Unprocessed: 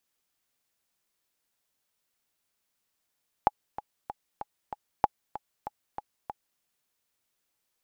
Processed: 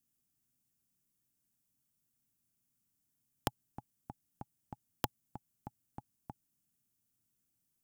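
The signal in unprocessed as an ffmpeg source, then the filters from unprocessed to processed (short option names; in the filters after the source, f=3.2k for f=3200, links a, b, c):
-f lavfi -i "aevalsrc='pow(10,(-7-15*gte(mod(t,5*60/191),60/191))/20)*sin(2*PI*836*mod(t,60/191))*exp(-6.91*mod(t,60/191)/0.03)':d=3.14:s=44100"
-af "equalizer=f=125:t=o:w=1:g=10,equalizer=f=250:t=o:w=1:g=7,equalizer=f=500:t=o:w=1:g=-12,equalizer=f=1k:t=o:w=1:g=-9,equalizer=f=2k:t=o:w=1:g=-9,equalizer=f=4k:t=o:w=1:g=-10,aeval=exprs='(mod(7.94*val(0)+1,2)-1)/7.94':c=same"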